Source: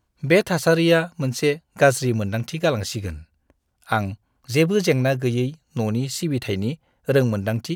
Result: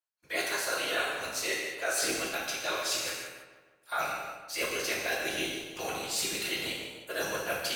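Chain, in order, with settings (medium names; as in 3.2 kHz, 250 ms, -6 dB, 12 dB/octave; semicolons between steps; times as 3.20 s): gate with hold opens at -41 dBFS; high-pass 900 Hz 12 dB/octave; treble shelf 5.4 kHz +6 dB; reverse; compression 6:1, threshold -33 dBFS, peak gain reduction 17.5 dB; reverse; whisper effect; filtered feedback delay 154 ms, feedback 51%, low-pass 2.9 kHz, level -9.5 dB; gated-style reverb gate 370 ms falling, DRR -3 dB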